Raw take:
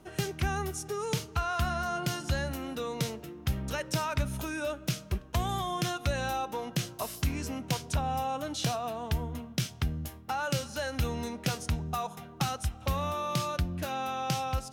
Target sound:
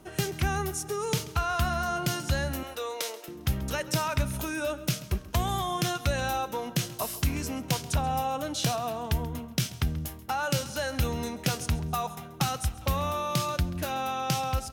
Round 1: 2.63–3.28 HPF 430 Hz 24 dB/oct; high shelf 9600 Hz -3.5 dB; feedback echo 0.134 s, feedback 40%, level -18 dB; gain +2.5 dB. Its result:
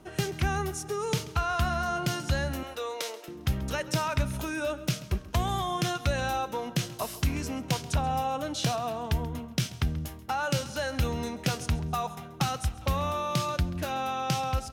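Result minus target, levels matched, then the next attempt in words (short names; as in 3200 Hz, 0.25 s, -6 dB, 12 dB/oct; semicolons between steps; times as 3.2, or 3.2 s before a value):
8000 Hz band -2.5 dB
2.63–3.28 HPF 430 Hz 24 dB/oct; high shelf 9600 Hz +6 dB; feedback echo 0.134 s, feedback 40%, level -18 dB; gain +2.5 dB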